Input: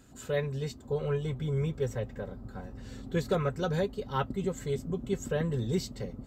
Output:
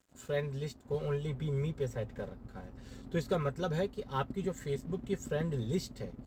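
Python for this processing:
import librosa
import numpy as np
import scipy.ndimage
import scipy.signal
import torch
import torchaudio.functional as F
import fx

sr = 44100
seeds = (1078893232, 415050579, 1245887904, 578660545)

y = fx.peak_eq(x, sr, hz=1800.0, db=9.5, octaves=0.21, at=(4.38, 5.21))
y = np.sign(y) * np.maximum(np.abs(y) - 10.0 ** (-54.5 / 20.0), 0.0)
y = fx.hum_notches(y, sr, base_hz=50, count=2)
y = fx.band_squash(y, sr, depth_pct=40, at=(0.94, 2.29))
y = y * librosa.db_to_amplitude(-3.0)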